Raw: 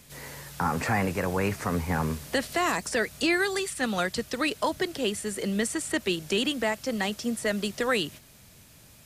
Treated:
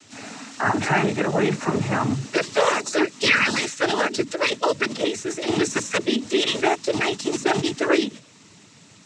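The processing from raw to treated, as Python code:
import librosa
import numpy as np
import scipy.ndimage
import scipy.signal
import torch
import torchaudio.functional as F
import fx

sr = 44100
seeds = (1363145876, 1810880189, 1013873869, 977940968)

y = fx.hum_notches(x, sr, base_hz=60, count=6)
y = fx.pitch_keep_formants(y, sr, semitones=9.0)
y = fx.noise_vocoder(y, sr, seeds[0], bands=12)
y = F.gain(torch.from_numpy(y), 7.0).numpy()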